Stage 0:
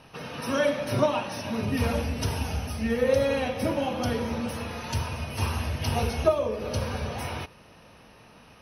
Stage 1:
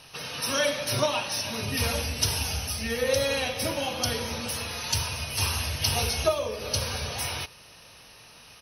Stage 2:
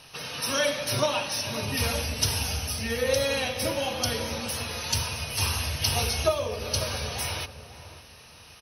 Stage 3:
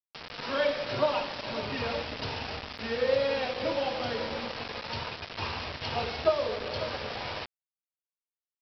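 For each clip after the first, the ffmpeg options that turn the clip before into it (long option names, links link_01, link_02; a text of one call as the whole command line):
ffmpeg -i in.wav -af "firequalizer=gain_entry='entry(140,0);entry(200,-6);entry(410,-1);entry(4300,14)':delay=0.05:min_phase=1,volume=-2.5dB" out.wav
ffmpeg -i in.wav -filter_complex "[0:a]asplit=2[link_01][link_02];[link_02]adelay=546,lowpass=frequency=940:poles=1,volume=-11dB,asplit=2[link_03][link_04];[link_04]adelay=546,lowpass=frequency=940:poles=1,volume=0.3,asplit=2[link_05][link_06];[link_06]adelay=546,lowpass=frequency=940:poles=1,volume=0.3[link_07];[link_01][link_03][link_05][link_07]amix=inputs=4:normalize=0" out.wav
ffmpeg -i in.wav -af "bandpass=frequency=620:width_type=q:width=0.51:csg=0,aresample=11025,acrusher=bits=5:mix=0:aa=0.000001,aresample=44100" out.wav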